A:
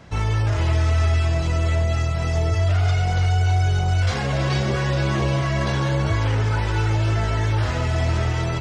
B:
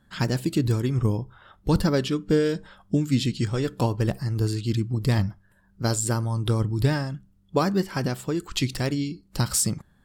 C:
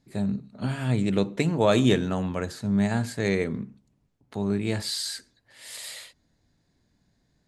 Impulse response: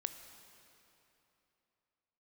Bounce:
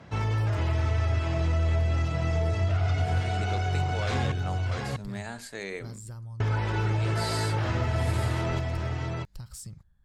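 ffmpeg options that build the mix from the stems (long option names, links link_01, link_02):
-filter_complex "[0:a]highpass=frequency=71:width=0.5412,highpass=frequency=71:width=1.3066,aemphasis=mode=reproduction:type=cd,volume=-3dB,asplit=3[link_01][link_02][link_03];[link_01]atrim=end=4.32,asetpts=PTS-STARTPTS,afade=type=out:start_time=4.316:duration=0.004:curve=hsin[link_04];[link_02]atrim=start=4.32:end=6.4,asetpts=PTS-STARTPTS,volume=0[link_05];[link_03]atrim=start=6.4,asetpts=PTS-STARTPTS,afade=type=in:duration=0.004:curve=hsin[link_06];[link_04][link_05][link_06]concat=n=3:v=0:a=1,asplit=2[link_07][link_08];[link_08]volume=-5.5dB[link_09];[1:a]asubboost=boost=8:cutoff=92,acompressor=threshold=-22dB:ratio=6,volume=-16dB[link_10];[2:a]highpass=frequency=720:poles=1,alimiter=limit=-20.5dB:level=0:latency=1:release=35,adelay=2350,volume=-4dB[link_11];[link_09]aecho=0:1:645:1[link_12];[link_07][link_10][link_11][link_12]amix=inputs=4:normalize=0,acompressor=threshold=-25dB:ratio=2"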